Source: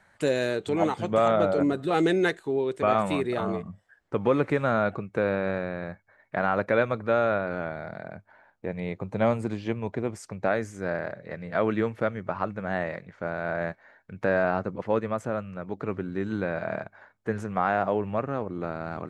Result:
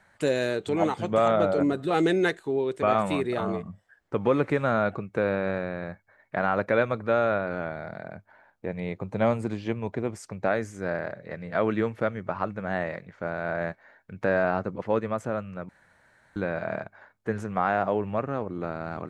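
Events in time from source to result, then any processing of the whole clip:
0:15.69–0:16.36: fill with room tone

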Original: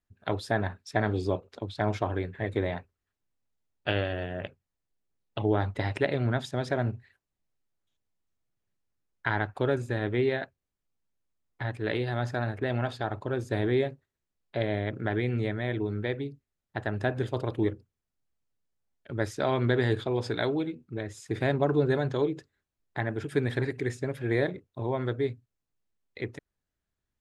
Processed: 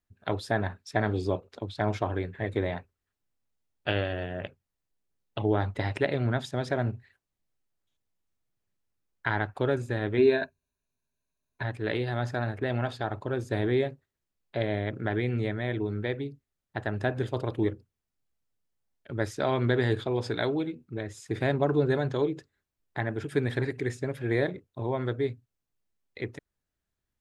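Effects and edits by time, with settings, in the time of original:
0:10.17–0:11.63: EQ curve with evenly spaced ripples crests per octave 1.5, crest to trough 13 dB

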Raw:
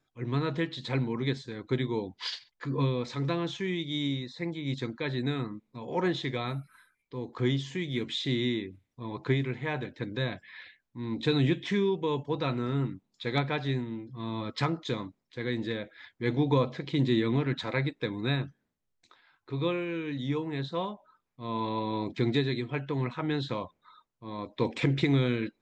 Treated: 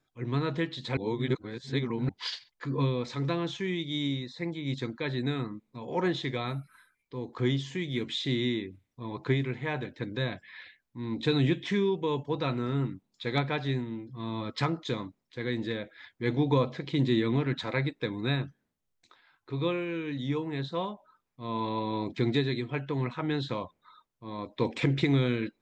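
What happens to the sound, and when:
0:00.97–0:02.09: reverse

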